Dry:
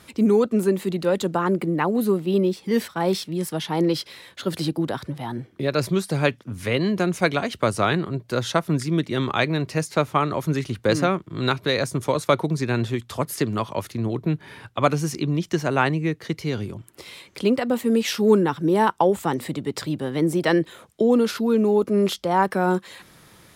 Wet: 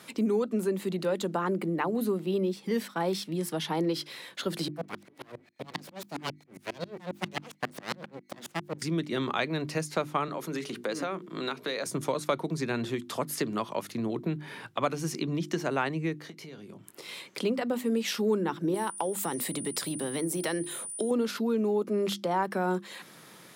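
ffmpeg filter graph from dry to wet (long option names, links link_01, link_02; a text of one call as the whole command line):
ffmpeg -i in.wav -filter_complex "[0:a]asettb=1/sr,asplit=3[link_01][link_02][link_03];[link_01]atrim=end=4.684[link_04];[link_02]atrim=start=4.68:end=8.82,asetpts=PTS-STARTPTS,afade=type=in:duration=0.004:curve=qsin,afade=type=out:start_time=4.136:duration=0.004:curve=qsin,aeval=exprs='val(0)+0.00224*sin(2*PI*2100*n/s)':channel_layout=same,aeval=exprs='abs(val(0))':channel_layout=same,aeval=exprs='val(0)*pow(10,-39*if(lt(mod(-7.4*n/s,1),2*abs(-7.4)/1000),1-mod(-7.4*n/s,1)/(2*abs(-7.4)/1000),(mod(-7.4*n/s,1)-2*abs(-7.4)/1000)/(1-2*abs(-7.4)/1000))/20)':channel_layout=same[link_05];[link_03]atrim=start=8.816[link_06];[link_04][link_05]acrossfade=duration=0.004:curve1=hsin:curve2=qsin[link_07];[link_07][link_06]acrossfade=duration=0.004:curve1=qsin:curve2=hsin,asettb=1/sr,asplit=3[link_08][link_09][link_10];[link_08]atrim=end=10.284[link_11];[link_09]atrim=start=10.28:end=11.86,asetpts=PTS-STARTPTS,afade=type=in:duration=0.004:curve=qsin,afade=type=out:start_time=1.576:duration=0.004:curve=qsin,highpass=220,bandreject=frequency=60:width_type=h:width=6,bandreject=frequency=120:width_type=h:width=6,bandreject=frequency=180:width_type=h:width=6,bandreject=frequency=240:width_type=h:width=6,bandreject=frequency=300:width_type=h:width=6,bandreject=frequency=360:width_type=h:width=6,bandreject=frequency=420:width_type=h:width=6,bandreject=frequency=480:width_type=h:width=6,acompressor=threshold=-30dB:ratio=2:attack=3.2:release=140:knee=1:detection=peak[link_12];[link_10]atrim=start=11.856[link_13];[link_11][link_12]acrossfade=duration=0.004:curve1=hsin:curve2=qsin[link_14];[link_14][link_13]acrossfade=duration=0.004:curve1=qsin:curve2=hsin,asettb=1/sr,asplit=3[link_15][link_16][link_17];[link_15]atrim=end=16.204[link_18];[link_16]atrim=start=16.2:end=17.09,asetpts=PTS-STARTPTS,afade=type=in:duration=0.004:curve=qsin,afade=type=out:start_time=0.886:duration=0.004:curve=qsin,acompressor=threshold=-40dB:ratio=8:attack=3.2:release=140:knee=1:detection=peak,asplit=2[link_19][link_20];[link_20]adelay=20,volume=-10dB[link_21];[link_19][link_21]amix=inputs=2:normalize=0,atrim=end_sample=39249[link_22];[link_17]atrim=start=17.086[link_23];[link_18][link_22]acrossfade=duration=0.004:curve1=hsin:curve2=qsin[link_24];[link_24][link_23]acrossfade=duration=0.004:curve1=qsin:curve2=hsin,asettb=1/sr,asplit=3[link_25][link_26][link_27];[link_25]atrim=end=18.744[link_28];[link_26]atrim=start=18.74:end=21.11,asetpts=PTS-STARTPTS,afade=type=in:duration=0.004:curve=qsin,afade=type=out:start_time=2.366:duration=0.004:curve=qsin,aemphasis=mode=production:type=50kf,acompressor=threshold=-26dB:ratio=2:attack=3.2:release=140:knee=1:detection=peak,aeval=exprs='val(0)+0.0158*sin(2*PI*9400*n/s)':channel_layout=same[link_29];[link_27]atrim=start=21.106[link_30];[link_28][link_29]acrossfade=duration=0.004:curve1=hsin:curve2=qsin[link_31];[link_31][link_30]acrossfade=duration=0.004:curve1=qsin:curve2=hsin,highpass=frequency=150:width=0.5412,highpass=frequency=150:width=1.3066,bandreject=frequency=50:width_type=h:width=6,bandreject=frequency=100:width_type=h:width=6,bandreject=frequency=150:width_type=h:width=6,bandreject=frequency=200:width_type=h:width=6,bandreject=frequency=250:width_type=h:width=6,bandreject=frequency=300:width_type=h:width=6,bandreject=frequency=350:width_type=h:width=6,acompressor=threshold=-31dB:ratio=2" out.wav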